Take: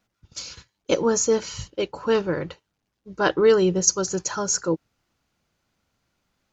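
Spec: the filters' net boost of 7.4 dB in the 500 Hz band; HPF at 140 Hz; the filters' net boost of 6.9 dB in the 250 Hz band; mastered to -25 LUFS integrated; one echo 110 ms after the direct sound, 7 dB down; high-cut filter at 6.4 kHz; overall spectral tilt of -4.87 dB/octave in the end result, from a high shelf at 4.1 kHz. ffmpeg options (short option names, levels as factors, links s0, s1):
-af "highpass=140,lowpass=6400,equalizer=f=250:t=o:g=8.5,equalizer=f=500:t=o:g=6,highshelf=f=4100:g=-4.5,aecho=1:1:110:0.447,volume=0.355"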